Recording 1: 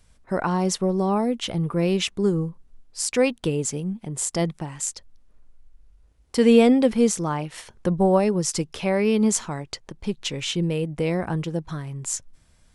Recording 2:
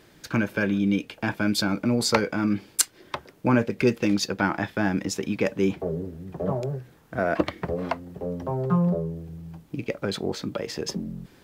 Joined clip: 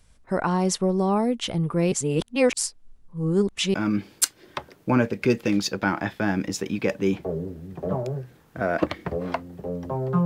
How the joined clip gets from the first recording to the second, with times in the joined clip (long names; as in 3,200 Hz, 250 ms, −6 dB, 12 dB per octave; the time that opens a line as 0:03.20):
recording 1
0:01.92–0:03.74: reverse
0:03.74: continue with recording 2 from 0:02.31